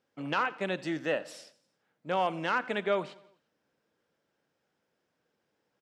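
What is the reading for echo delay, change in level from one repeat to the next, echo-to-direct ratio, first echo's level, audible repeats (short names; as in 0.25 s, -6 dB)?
86 ms, -5.0 dB, -19.0 dB, -20.5 dB, 3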